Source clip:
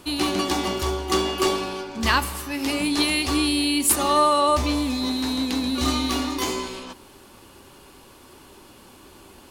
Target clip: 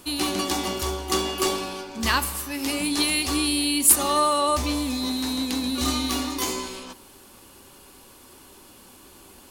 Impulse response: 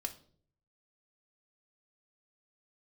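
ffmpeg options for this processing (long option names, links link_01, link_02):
-filter_complex "[0:a]highshelf=frequency=4900:gain=10.5,asplit=2[link_01][link_02];[1:a]atrim=start_sample=2205,asetrate=35721,aresample=44100,lowpass=3100[link_03];[link_02][link_03]afir=irnorm=-1:irlink=0,volume=-13.5dB[link_04];[link_01][link_04]amix=inputs=2:normalize=0,volume=-4.5dB"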